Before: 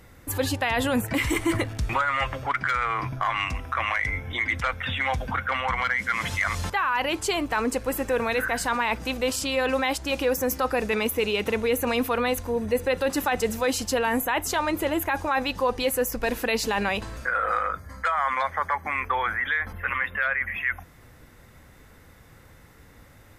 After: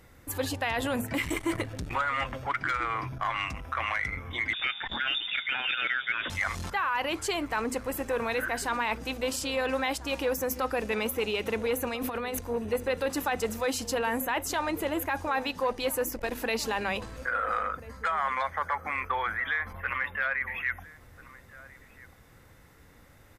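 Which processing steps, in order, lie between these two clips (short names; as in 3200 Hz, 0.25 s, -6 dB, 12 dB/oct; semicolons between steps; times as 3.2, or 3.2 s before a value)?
notches 50/100/150/200/250 Hz; 11.87–12.39 negative-ratio compressor -27 dBFS, ratio -0.5; outdoor echo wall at 230 m, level -16 dB; 4.53–6.3 inverted band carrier 3600 Hz; core saturation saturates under 450 Hz; gain -4 dB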